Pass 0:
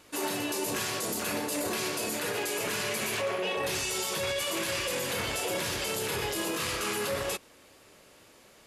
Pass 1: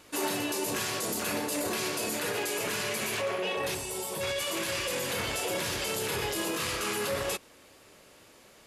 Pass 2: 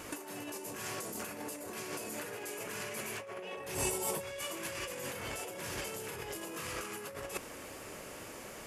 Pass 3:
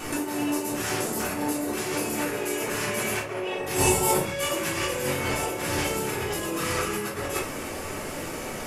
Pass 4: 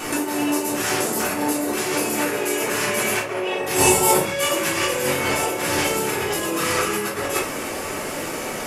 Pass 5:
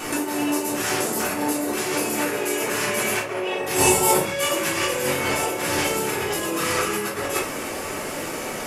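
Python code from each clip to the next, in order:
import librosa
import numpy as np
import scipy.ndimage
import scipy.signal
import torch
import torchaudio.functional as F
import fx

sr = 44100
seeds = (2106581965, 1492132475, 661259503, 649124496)

y1 = fx.rider(x, sr, range_db=10, speed_s=0.5)
y1 = fx.spec_box(y1, sr, start_s=3.75, length_s=0.46, low_hz=1100.0, high_hz=7500.0, gain_db=-8)
y2 = fx.peak_eq(y1, sr, hz=3900.0, db=-8.5, octaves=0.64)
y2 = fx.over_compress(y2, sr, threshold_db=-39.0, ratio=-0.5)
y2 = y2 * librosa.db_to_amplitude(1.0)
y3 = fx.room_shoebox(y2, sr, seeds[0], volume_m3=270.0, walls='furnished', distance_m=3.5)
y3 = y3 * librosa.db_to_amplitude(6.0)
y4 = fx.low_shelf(y3, sr, hz=120.0, db=-12.0)
y4 = y4 * librosa.db_to_amplitude(6.5)
y5 = fx.dmg_crackle(y4, sr, seeds[1], per_s=140.0, level_db=-46.0)
y5 = y5 * librosa.db_to_amplitude(-1.5)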